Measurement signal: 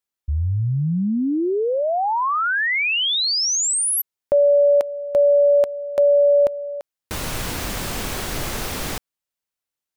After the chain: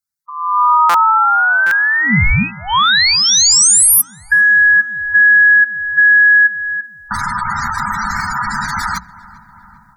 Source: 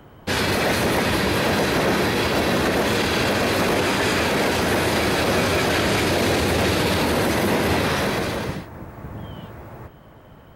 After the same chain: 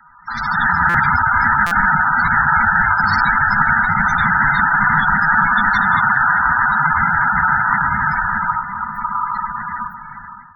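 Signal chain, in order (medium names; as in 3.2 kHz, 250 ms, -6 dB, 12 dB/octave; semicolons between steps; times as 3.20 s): in parallel at +2 dB: compression 8:1, threshold -27 dBFS; on the sum: high-pass 98 Hz 24 dB/octave; ring modulator 1.1 kHz; peaking EQ 2.8 kHz -14 dB 0.41 oct; spectral gate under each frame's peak -10 dB strong; Chebyshev band-stop 210–1000 Hz, order 3; hum notches 60/120/180 Hz; on a send: filtered feedback delay 398 ms, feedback 79%, low-pass 1.7 kHz, level -19.5 dB; on the sum: level rider gain up to 14 dB; short-mantissa float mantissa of 8-bit; buffer glitch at 0.89/1.66 s, samples 256, times 8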